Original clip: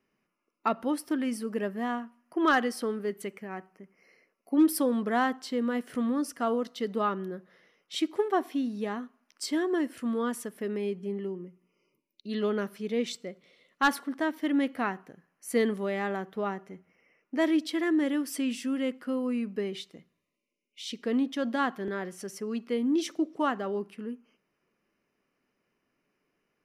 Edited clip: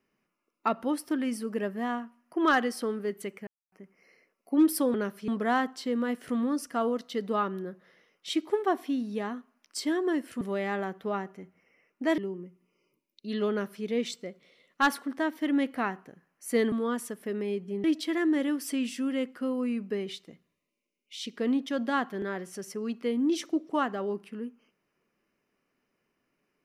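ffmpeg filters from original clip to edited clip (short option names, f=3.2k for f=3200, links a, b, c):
-filter_complex "[0:a]asplit=9[a][b][c][d][e][f][g][h][i];[a]atrim=end=3.47,asetpts=PTS-STARTPTS,afade=t=out:st=3.466:d=0.004:c=hsin[j];[b]atrim=start=3.47:end=3.72,asetpts=PTS-STARTPTS,volume=0[k];[c]atrim=start=3.72:end=4.942,asetpts=PTS-STARTPTS,afade=t=in:d=0.004:c=hsin[l];[d]atrim=start=12.508:end=12.852[m];[e]atrim=start=4.938:end=10.072[n];[f]atrim=start=15.728:end=17.502[o];[g]atrim=start=11.188:end=15.732[p];[h]atrim=start=10.068:end=11.192[q];[i]atrim=start=17.498[r];[j][k][l]concat=n=3:v=0:a=1[s];[s][m]acrossfade=d=0.004:c1=hsin:c2=hsin[t];[t][n]acrossfade=d=0.004:c1=hsin:c2=hsin[u];[u][o]acrossfade=d=0.004:c1=hsin:c2=hsin[v];[v][p]acrossfade=d=0.004:c1=hsin:c2=hsin[w];[w][q]acrossfade=d=0.004:c1=hsin:c2=hsin[x];[x][r]acrossfade=d=0.004:c1=hsin:c2=hsin"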